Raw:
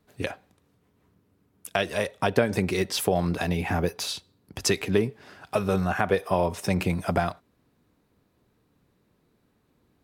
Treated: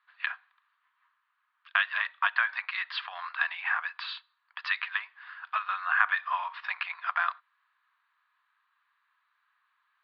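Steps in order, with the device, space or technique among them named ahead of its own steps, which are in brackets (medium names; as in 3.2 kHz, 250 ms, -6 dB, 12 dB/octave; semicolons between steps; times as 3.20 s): Chebyshev band-pass 1–4.6 kHz, order 4; phone earpiece (cabinet simulation 370–3700 Hz, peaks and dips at 450 Hz -6 dB, 690 Hz +7 dB, 1.2 kHz +7 dB, 1.7 kHz +8 dB)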